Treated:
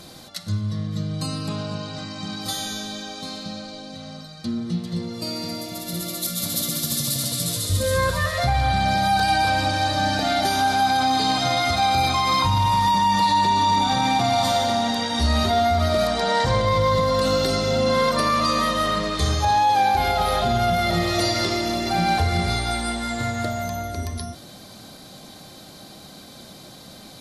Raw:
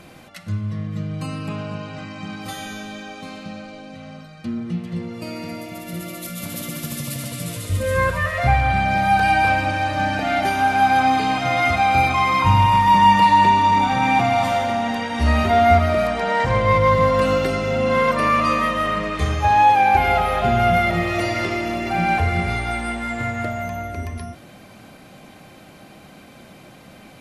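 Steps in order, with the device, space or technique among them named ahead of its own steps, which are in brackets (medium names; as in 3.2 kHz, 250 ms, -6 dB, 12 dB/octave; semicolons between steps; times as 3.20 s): over-bright horn tweeter (resonant high shelf 3.2 kHz +7 dB, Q 3; peak limiter -11.5 dBFS, peak gain reduction 8 dB)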